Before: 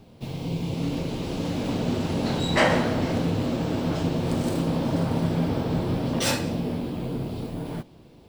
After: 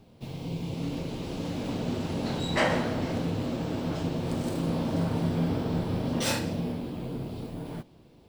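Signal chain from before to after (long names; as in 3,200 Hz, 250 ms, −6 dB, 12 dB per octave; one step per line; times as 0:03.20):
0:04.59–0:06.72: double-tracking delay 41 ms −5 dB
level −5 dB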